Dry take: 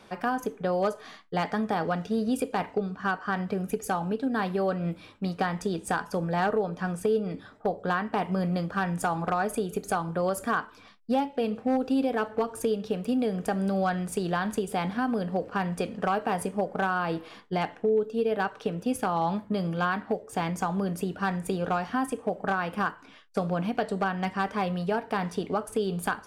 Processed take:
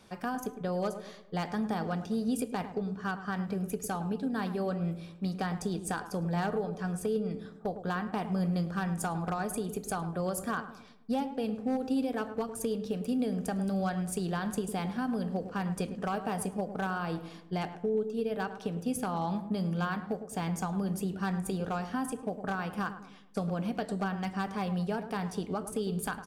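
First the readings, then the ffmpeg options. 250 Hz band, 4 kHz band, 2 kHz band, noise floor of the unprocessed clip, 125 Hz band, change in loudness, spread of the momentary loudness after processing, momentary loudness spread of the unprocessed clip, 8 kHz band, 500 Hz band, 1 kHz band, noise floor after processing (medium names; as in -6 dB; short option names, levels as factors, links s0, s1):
-2.5 dB, -4.5 dB, -7.0 dB, -52 dBFS, -1.5 dB, -4.5 dB, 5 LU, 4 LU, 0.0 dB, -6.5 dB, -7.0 dB, -49 dBFS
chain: -filter_complex "[0:a]bass=f=250:g=7,treble=f=4000:g=8,asplit=2[s0][s1];[s1]adelay=106,lowpass=f=1200:p=1,volume=0.316,asplit=2[s2][s3];[s3]adelay=106,lowpass=f=1200:p=1,volume=0.51,asplit=2[s4][s5];[s5]adelay=106,lowpass=f=1200:p=1,volume=0.51,asplit=2[s6][s7];[s7]adelay=106,lowpass=f=1200:p=1,volume=0.51,asplit=2[s8][s9];[s9]adelay=106,lowpass=f=1200:p=1,volume=0.51,asplit=2[s10][s11];[s11]adelay=106,lowpass=f=1200:p=1,volume=0.51[s12];[s2][s4][s6][s8][s10][s12]amix=inputs=6:normalize=0[s13];[s0][s13]amix=inputs=2:normalize=0,volume=0.422"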